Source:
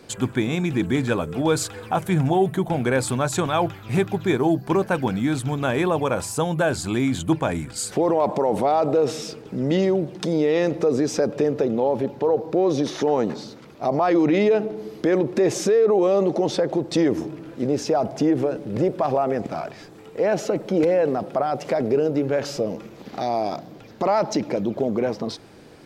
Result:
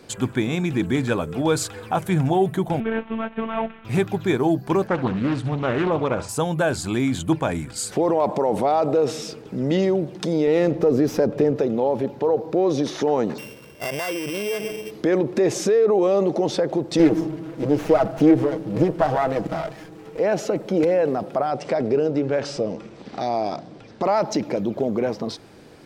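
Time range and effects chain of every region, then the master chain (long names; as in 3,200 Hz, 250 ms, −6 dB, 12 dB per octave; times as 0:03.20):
0:02.80–0:03.85: variable-slope delta modulation 16 kbit/s + phases set to zero 224 Hz
0:04.87–0:06.29: high-frequency loss of the air 120 metres + flutter between parallel walls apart 11.7 metres, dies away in 0.29 s + highs frequency-modulated by the lows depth 0.39 ms
0:10.47–0:11.56: spectral tilt −1.5 dB per octave + windowed peak hold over 3 samples
0:13.38–0:14.91: samples sorted by size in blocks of 16 samples + downward compressor 12 to 1, threshold −23 dBFS + comb filter 1.9 ms, depth 40%
0:16.99–0:20.19: comb filter 6.3 ms, depth 91% + windowed peak hold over 9 samples
0:21.51–0:24.02: Butterworth low-pass 9,000 Hz + notch filter 6,800 Hz, Q 10
whole clip: no processing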